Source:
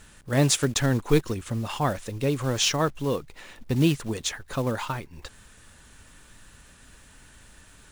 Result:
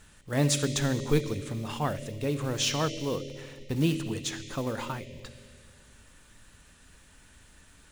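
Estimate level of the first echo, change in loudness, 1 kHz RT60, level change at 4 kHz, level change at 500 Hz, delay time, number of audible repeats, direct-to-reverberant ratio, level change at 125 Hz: none, -4.0 dB, 2.1 s, -4.0 dB, -4.0 dB, none, none, 7.0 dB, -4.0 dB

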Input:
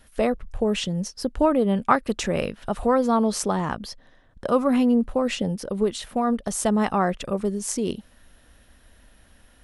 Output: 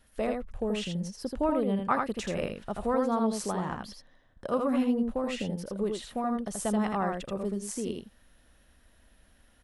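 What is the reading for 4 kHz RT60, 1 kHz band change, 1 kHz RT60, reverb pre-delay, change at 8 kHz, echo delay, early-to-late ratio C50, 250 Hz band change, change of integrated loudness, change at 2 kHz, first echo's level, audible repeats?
none, -7.0 dB, none, none, -9.0 dB, 81 ms, none, -7.0 dB, -7.0 dB, -7.0 dB, -4.0 dB, 1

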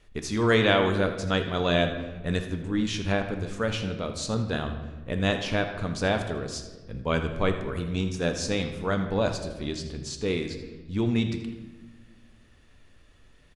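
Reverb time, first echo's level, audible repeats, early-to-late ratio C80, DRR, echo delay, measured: 1.3 s, -14.0 dB, 1, 9.0 dB, 5.5 dB, 81 ms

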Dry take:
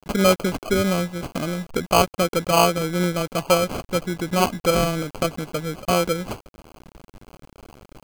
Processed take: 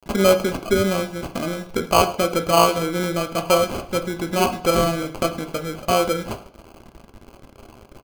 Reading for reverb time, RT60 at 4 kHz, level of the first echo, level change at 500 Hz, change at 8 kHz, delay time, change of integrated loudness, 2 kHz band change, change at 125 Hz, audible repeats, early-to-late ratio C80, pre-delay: 0.55 s, 0.60 s, -20.0 dB, +2.0 dB, 0.0 dB, 0.106 s, +1.0 dB, +0.5 dB, -2.0 dB, 1, 16.0 dB, 3 ms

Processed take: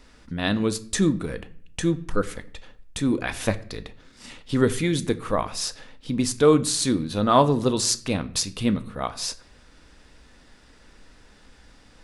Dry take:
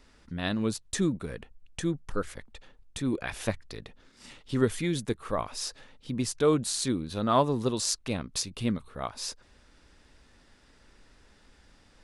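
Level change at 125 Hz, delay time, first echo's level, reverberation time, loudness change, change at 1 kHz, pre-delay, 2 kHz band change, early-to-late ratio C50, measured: +6.0 dB, none, none, 0.50 s, +6.5 dB, +6.5 dB, 4 ms, +6.5 dB, 18.0 dB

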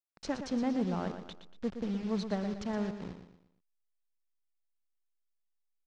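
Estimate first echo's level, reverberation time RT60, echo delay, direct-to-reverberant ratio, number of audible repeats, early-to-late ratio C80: -9.0 dB, none, 0.118 s, none, 4, none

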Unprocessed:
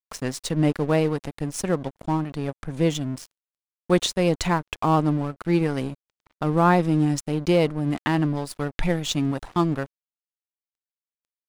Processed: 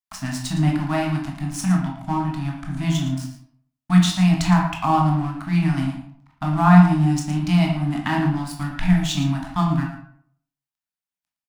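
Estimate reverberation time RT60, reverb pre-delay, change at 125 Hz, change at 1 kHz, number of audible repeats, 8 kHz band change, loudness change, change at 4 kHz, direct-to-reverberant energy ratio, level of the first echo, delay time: 0.60 s, 15 ms, +6.5 dB, +3.0 dB, 1, +1.0 dB, +3.5 dB, +1.5 dB, -1.0 dB, -11.5 dB, 0.113 s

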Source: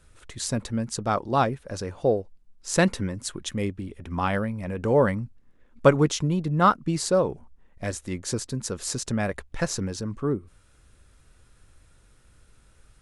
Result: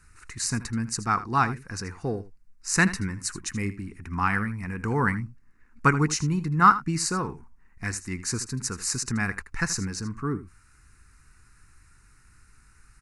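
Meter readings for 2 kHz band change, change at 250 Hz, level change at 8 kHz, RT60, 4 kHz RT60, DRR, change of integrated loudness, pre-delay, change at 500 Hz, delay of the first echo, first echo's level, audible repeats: +5.0 dB, -1.5 dB, +3.0 dB, none, none, none, -0.5 dB, none, -11.0 dB, 79 ms, -15.0 dB, 1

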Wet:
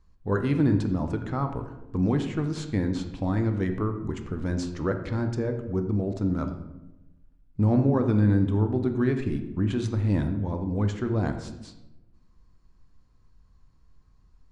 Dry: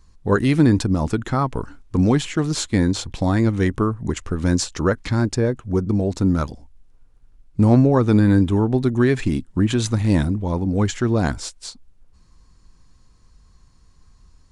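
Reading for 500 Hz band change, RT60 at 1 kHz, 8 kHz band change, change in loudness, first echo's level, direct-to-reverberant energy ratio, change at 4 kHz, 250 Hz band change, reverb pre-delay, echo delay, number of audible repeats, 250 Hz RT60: -7.5 dB, 0.85 s, under -15 dB, -7.0 dB, none, 6.5 dB, -14.0 dB, -7.0 dB, 20 ms, none, none, 1.2 s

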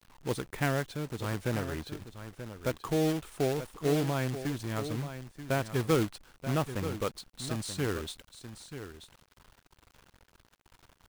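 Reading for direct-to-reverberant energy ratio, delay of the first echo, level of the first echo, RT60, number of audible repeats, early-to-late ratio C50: none, 0.933 s, -11.0 dB, none, 1, none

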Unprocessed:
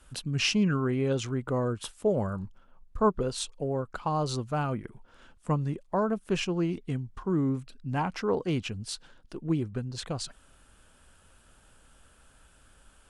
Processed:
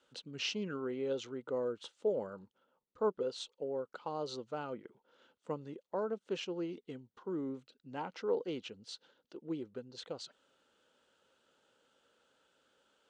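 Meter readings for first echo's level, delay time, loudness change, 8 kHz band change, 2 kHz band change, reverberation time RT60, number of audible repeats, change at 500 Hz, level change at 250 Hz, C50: none, none, -9.5 dB, -14.0 dB, -11.5 dB, none, none, -6.0 dB, -12.5 dB, none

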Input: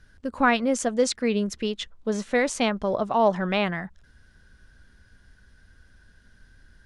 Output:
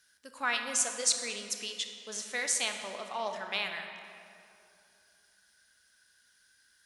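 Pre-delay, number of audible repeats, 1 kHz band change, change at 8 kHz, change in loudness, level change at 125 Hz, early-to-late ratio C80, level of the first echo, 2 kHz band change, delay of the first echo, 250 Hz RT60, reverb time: 21 ms, none, -12.0 dB, +5.0 dB, -7.0 dB, -25.0 dB, 7.0 dB, none, -5.5 dB, none, 3.0 s, 2.7 s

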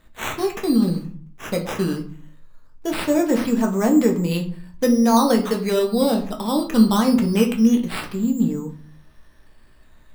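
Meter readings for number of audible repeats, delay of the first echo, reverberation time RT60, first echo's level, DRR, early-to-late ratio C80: none, none, 0.50 s, none, 2.0 dB, 15.5 dB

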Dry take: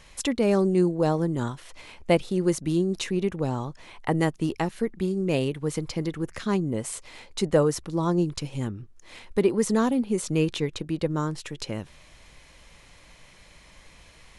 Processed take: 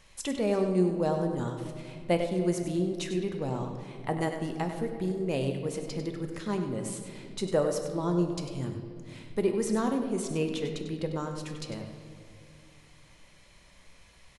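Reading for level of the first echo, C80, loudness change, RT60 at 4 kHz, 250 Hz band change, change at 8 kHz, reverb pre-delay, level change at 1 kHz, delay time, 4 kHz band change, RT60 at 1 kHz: -9.5 dB, 6.0 dB, -5.0 dB, 1.4 s, -5.0 dB, -5.0 dB, 5 ms, -4.0 dB, 98 ms, -5.5 dB, 2.0 s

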